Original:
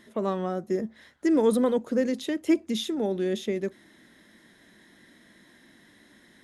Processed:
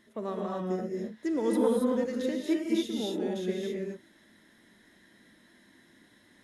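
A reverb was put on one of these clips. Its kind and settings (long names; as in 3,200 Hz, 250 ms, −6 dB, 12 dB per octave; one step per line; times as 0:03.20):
reverb whose tail is shaped and stops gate 300 ms rising, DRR −2 dB
level −8 dB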